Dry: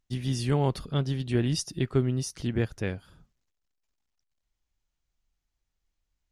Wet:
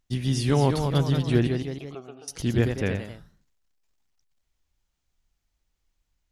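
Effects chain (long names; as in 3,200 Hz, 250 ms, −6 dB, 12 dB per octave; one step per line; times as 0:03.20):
0:01.47–0:02.28: formant filter a
delay with pitch and tempo change per echo 237 ms, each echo +1 semitone, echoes 3, each echo −6 dB
level +4 dB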